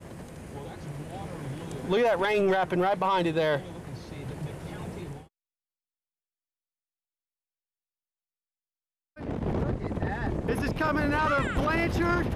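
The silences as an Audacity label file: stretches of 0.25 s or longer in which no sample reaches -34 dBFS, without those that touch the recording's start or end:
5.170000	9.190000	silence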